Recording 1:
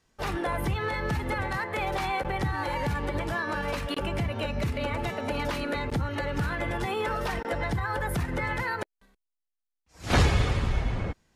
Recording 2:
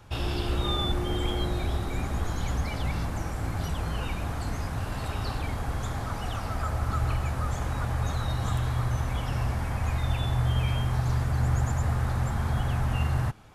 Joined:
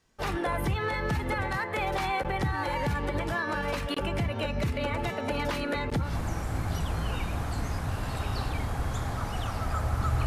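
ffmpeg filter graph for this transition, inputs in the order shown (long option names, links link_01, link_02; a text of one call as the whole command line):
ffmpeg -i cue0.wav -i cue1.wav -filter_complex "[0:a]apad=whole_dur=10.26,atrim=end=10.26,atrim=end=6.15,asetpts=PTS-STARTPTS[link_01];[1:a]atrim=start=2.88:end=7.15,asetpts=PTS-STARTPTS[link_02];[link_01][link_02]acrossfade=duration=0.16:curve1=tri:curve2=tri" out.wav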